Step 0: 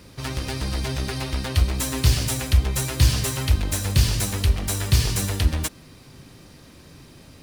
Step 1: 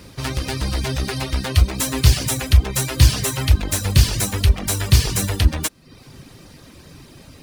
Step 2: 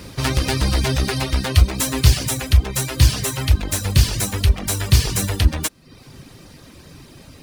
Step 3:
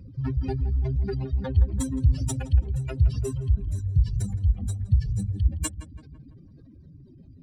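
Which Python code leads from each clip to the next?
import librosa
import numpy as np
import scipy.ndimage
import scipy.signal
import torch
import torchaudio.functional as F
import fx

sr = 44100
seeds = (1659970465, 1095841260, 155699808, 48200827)

y1 = fx.dereverb_blind(x, sr, rt60_s=0.59)
y1 = y1 * 10.0 ** (5.0 / 20.0)
y2 = fx.rider(y1, sr, range_db=5, speed_s=2.0)
y3 = fx.spec_expand(y2, sr, power=2.9)
y3 = fx.echo_filtered(y3, sr, ms=167, feedback_pct=55, hz=2000.0, wet_db=-12.0)
y3 = y3 * 10.0 ** (-6.0 / 20.0)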